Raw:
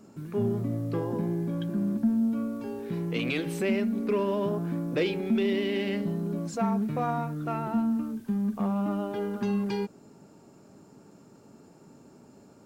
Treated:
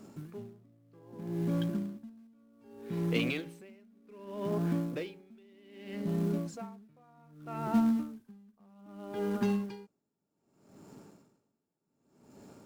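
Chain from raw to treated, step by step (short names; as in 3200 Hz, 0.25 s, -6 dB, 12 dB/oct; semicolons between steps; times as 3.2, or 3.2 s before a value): in parallel at -11 dB: companded quantiser 4-bit; on the sum: dB-linear tremolo 0.64 Hz, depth 34 dB; gain -1.5 dB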